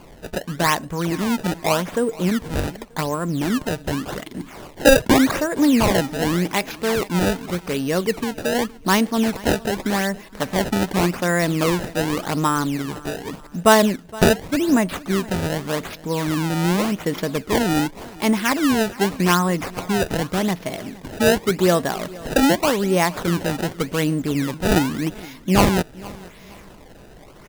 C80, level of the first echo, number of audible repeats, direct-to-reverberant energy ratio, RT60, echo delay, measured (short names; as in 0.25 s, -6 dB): none, -20.5 dB, 2, none, none, 0.467 s